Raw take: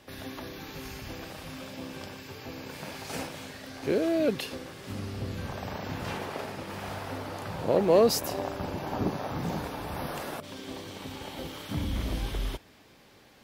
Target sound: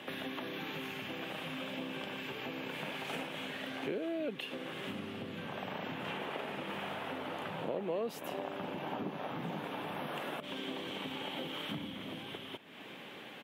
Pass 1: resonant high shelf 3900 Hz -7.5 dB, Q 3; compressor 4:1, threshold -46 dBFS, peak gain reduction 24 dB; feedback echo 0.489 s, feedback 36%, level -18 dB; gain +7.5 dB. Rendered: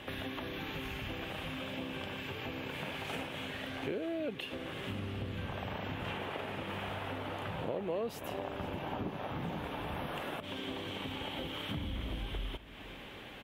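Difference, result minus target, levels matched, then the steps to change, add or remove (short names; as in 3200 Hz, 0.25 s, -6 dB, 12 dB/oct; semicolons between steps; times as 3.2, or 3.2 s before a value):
125 Hz band +6.0 dB; echo-to-direct +8 dB
add after compressor: HPF 150 Hz 24 dB/oct; change: feedback echo 0.489 s, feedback 36%, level -26 dB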